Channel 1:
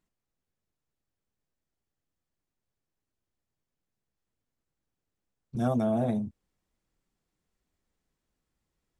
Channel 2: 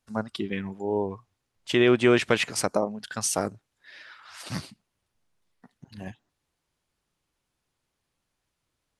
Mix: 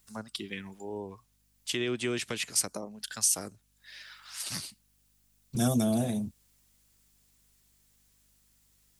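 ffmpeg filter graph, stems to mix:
-filter_complex "[0:a]volume=1.19[s0];[1:a]acrossover=split=400[s1][s2];[s2]acompressor=threshold=0.0178:ratio=2[s3];[s1][s3]amix=inputs=2:normalize=0,aeval=exprs='val(0)+0.000891*(sin(2*PI*50*n/s)+sin(2*PI*2*50*n/s)/2+sin(2*PI*3*50*n/s)/3+sin(2*PI*4*50*n/s)/4+sin(2*PI*5*50*n/s)/5)':c=same,volume=0.299,asplit=2[s4][s5];[s5]apad=whole_len=396817[s6];[s0][s6]sidechaincompress=threshold=0.00631:ratio=8:attack=6.3:release=698[s7];[s7][s4]amix=inputs=2:normalize=0,acrossover=split=440|3000[s8][s9][s10];[s9]acompressor=threshold=0.0112:ratio=6[s11];[s8][s11][s10]amix=inputs=3:normalize=0,crystalizer=i=8:c=0"

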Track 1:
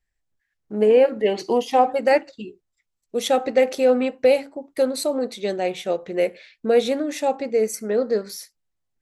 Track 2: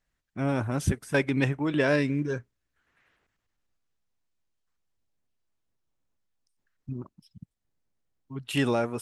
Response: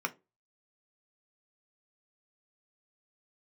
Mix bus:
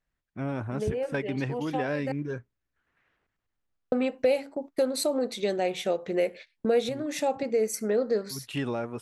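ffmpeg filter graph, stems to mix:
-filter_complex "[0:a]agate=range=0.0708:threshold=0.0126:ratio=16:detection=peak,volume=1.33,asplit=3[s0][s1][s2];[s0]atrim=end=2.12,asetpts=PTS-STARTPTS,afade=t=out:st=2.116:d=0.004:c=hsin[s3];[s1]atrim=start=2.12:end=3.92,asetpts=PTS-STARTPTS,volume=0[s4];[s2]atrim=start=3.92,asetpts=PTS-STARTPTS,afade=t=in:d=0.004:c=hsin[s5];[s3][s4][s5]concat=n=3:v=0:a=1[s6];[1:a]lowpass=f=3100:p=1,volume=0.75,asplit=2[s7][s8];[s8]apad=whole_len=397747[s9];[s6][s9]sidechaincompress=threshold=0.00794:ratio=5:attack=23:release=539[s10];[s10][s7]amix=inputs=2:normalize=0,acompressor=threshold=0.0398:ratio=2"

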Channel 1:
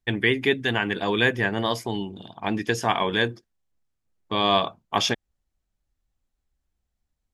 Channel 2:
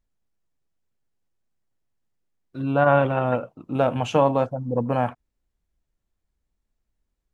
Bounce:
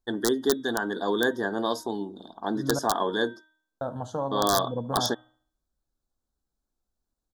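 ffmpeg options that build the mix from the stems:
-filter_complex "[0:a]lowshelf=f=180:t=q:w=1.5:g=-12,volume=0.75[s0];[1:a]bandreject=f=5400:w=12,alimiter=limit=0.266:level=0:latency=1:release=364,volume=0.447,asplit=3[s1][s2][s3];[s1]atrim=end=2.79,asetpts=PTS-STARTPTS,afade=t=out:st=2.786:d=0.004:c=hsin[s4];[s2]atrim=start=2.79:end=3.81,asetpts=PTS-STARTPTS,volume=0[s5];[s3]atrim=start=3.81,asetpts=PTS-STARTPTS,afade=t=in:d=0.004:c=hsin[s6];[s4][s5][s6]concat=n=3:v=0:a=1,asplit=2[s7][s8];[s8]volume=0.1,aecho=0:1:73|146|219|292|365|438:1|0.4|0.16|0.064|0.0256|0.0102[s9];[s0][s7][s9]amix=inputs=3:normalize=0,bandreject=f=312.6:t=h:w=4,bandreject=f=625.2:t=h:w=4,bandreject=f=937.8:t=h:w=4,bandreject=f=1250.4:t=h:w=4,bandreject=f=1563:t=h:w=4,bandreject=f=1875.6:t=h:w=4,bandreject=f=2188.2:t=h:w=4,bandreject=f=2500.8:t=h:w=4,bandreject=f=2813.4:t=h:w=4,bandreject=f=3126:t=h:w=4,bandreject=f=3438.6:t=h:w=4,bandreject=f=3751.2:t=h:w=4,aeval=exprs='(mod(3.55*val(0)+1,2)-1)/3.55':c=same,asuperstop=centerf=2400:order=8:qfactor=1.3"

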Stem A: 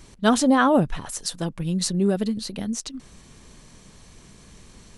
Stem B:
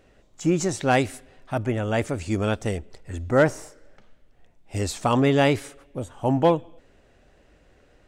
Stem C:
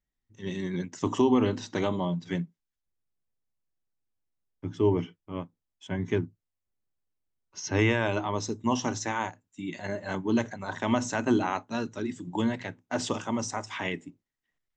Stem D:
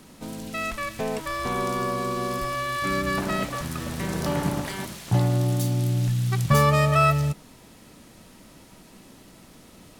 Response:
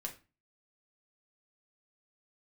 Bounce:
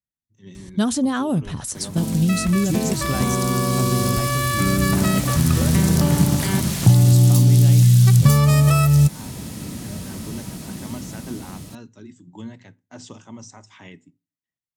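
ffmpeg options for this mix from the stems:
-filter_complex "[0:a]adelay=550,volume=0.841[s0];[1:a]acompressor=threshold=0.0631:ratio=6,adelay=2250,volume=1.06[s1];[2:a]lowshelf=f=190:g=-6.5,volume=0.2,asplit=2[s2][s3];[s3]volume=0.211[s4];[3:a]dynaudnorm=f=700:g=5:m=3.76,adelay=1750,volume=1.41[s5];[4:a]atrim=start_sample=2205[s6];[s4][s6]afir=irnorm=-1:irlink=0[s7];[s0][s1][s2][s5][s7]amix=inputs=5:normalize=0,acrossover=split=2800|7000[s8][s9][s10];[s8]acompressor=threshold=0.0631:ratio=4[s11];[s9]acompressor=threshold=0.0126:ratio=4[s12];[s10]acompressor=threshold=0.0158:ratio=4[s13];[s11][s12][s13]amix=inputs=3:normalize=0,highpass=76,bass=f=250:g=14,treble=f=4000:g=7"

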